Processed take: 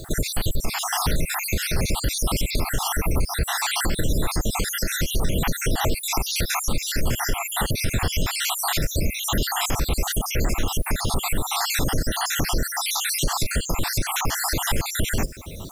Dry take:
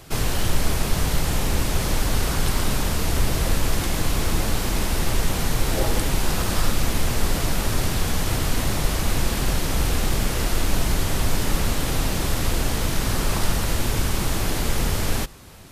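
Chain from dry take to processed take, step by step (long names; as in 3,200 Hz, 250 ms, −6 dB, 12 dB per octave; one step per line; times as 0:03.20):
time-frequency cells dropped at random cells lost 68%
in parallel at +2 dB: downward compressor, threshold −28 dBFS, peak gain reduction 14 dB
on the sum: brickwall limiter −16.5 dBFS, peak gain reduction 10 dB
background noise blue −58 dBFS
level +3.5 dB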